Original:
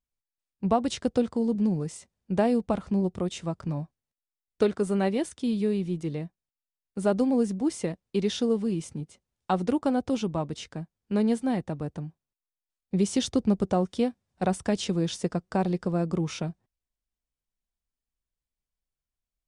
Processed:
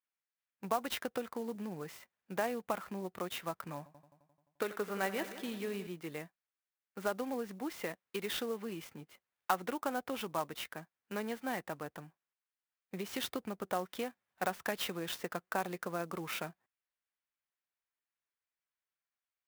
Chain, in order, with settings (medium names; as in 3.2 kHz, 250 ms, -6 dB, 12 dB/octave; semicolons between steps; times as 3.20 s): compression, threshold -24 dBFS, peak gain reduction 7 dB; band-pass filter 1.7 kHz, Q 1.2; 3.77–5.87 s: multi-head delay 87 ms, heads first and second, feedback 57%, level -15.5 dB; sampling jitter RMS 0.031 ms; trim +5 dB